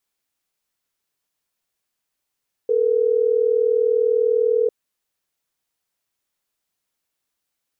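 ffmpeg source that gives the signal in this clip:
ffmpeg -f lavfi -i "aevalsrc='0.126*(sin(2*PI*440*t)+sin(2*PI*480*t))*clip(min(mod(t,6),2-mod(t,6))/0.005,0,1)':duration=3.12:sample_rate=44100" out.wav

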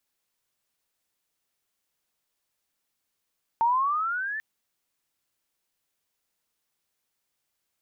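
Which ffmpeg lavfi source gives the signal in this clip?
ffmpeg -f lavfi -i "aevalsrc='pow(10,(-18.5-11*t/0.79)/20)*sin(2*PI*900*0.79/log(1800/900)*(exp(log(1800/900)*t/0.79)-1))':duration=0.79:sample_rate=44100" out.wav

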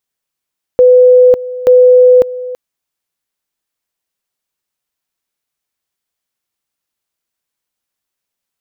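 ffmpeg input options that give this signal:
ffmpeg -f lavfi -i "aevalsrc='pow(10,(-2-17*gte(mod(t,0.88),0.55))/20)*sin(2*PI*501*t)':duration=1.76:sample_rate=44100" out.wav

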